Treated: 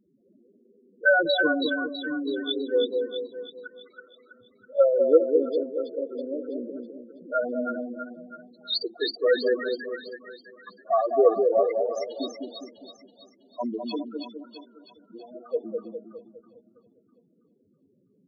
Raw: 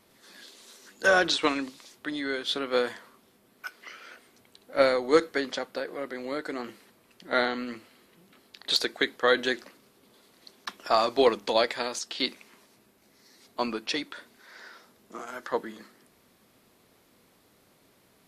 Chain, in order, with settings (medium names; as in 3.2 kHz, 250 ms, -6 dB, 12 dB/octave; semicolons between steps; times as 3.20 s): local Wiener filter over 25 samples; treble shelf 3.1 kHz +3.5 dB; loudest bins only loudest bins 4; on a send: two-band feedback delay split 810 Hz, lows 204 ms, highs 326 ms, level -4 dB; on the sum: trim +4 dB